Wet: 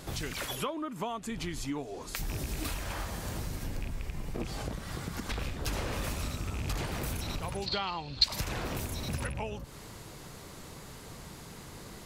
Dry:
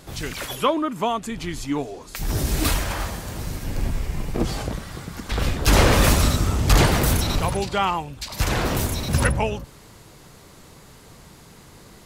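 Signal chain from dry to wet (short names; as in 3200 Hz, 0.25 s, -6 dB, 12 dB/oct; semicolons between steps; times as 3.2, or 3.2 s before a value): rattling part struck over -19 dBFS, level -18 dBFS; compressor 6:1, threshold -33 dBFS, peak gain reduction 20.5 dB; 7.66–8.24 synth low-pass 4300 Hz, resonance Q 12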